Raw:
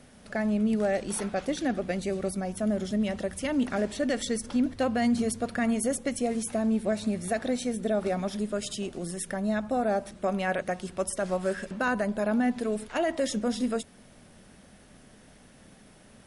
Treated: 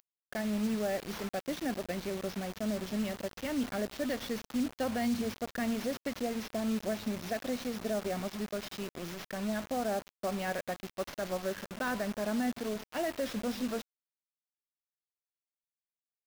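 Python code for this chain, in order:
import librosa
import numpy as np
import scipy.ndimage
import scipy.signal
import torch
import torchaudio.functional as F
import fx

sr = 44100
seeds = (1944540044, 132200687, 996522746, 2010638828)

y = fx.delta_mod(x, sr, bps=32000, step_db=-34.0)
y = fx.quant_dither(y, sr, seeds[0], bits=6, dither='none')
y = y * 10.0 ** (-6.5 / 20.0)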